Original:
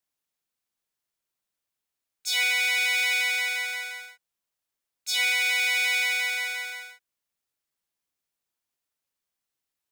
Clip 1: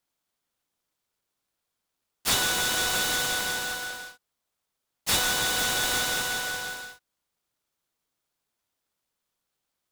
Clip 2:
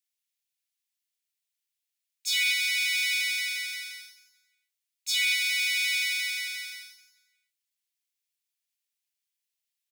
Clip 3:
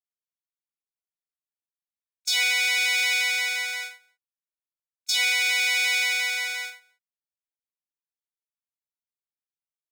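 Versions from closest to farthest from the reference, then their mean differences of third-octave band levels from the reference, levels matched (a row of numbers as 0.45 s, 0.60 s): 3, 2, 1; 2.0 dB, 5.0 dB, 14.5 dB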